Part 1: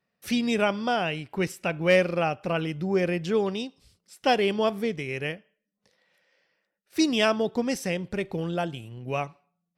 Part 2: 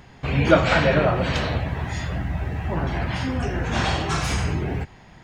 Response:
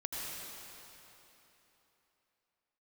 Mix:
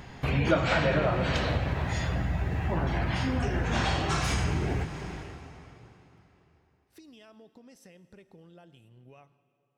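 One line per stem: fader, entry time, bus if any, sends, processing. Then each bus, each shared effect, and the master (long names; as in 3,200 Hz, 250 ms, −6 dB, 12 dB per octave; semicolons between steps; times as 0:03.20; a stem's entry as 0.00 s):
−15.5 dB, 0.00 s, send −17 dB, notch filter 2,300 Hz, Q 14; brickwall limiter −20 dBFS, peak gain reduction 10.5 dB; downward compressor 10 to 1, threshold −35 dBFS, peak gain reduction 11.5 dB
+0.5 dB, 0.00 s, send −11.5 dB, no processing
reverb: on, RT60 3.4 s, pre-delay 75 ms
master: downward compressor 2 to 1, threshold −29 dBFS, peak gain reduction 12 dB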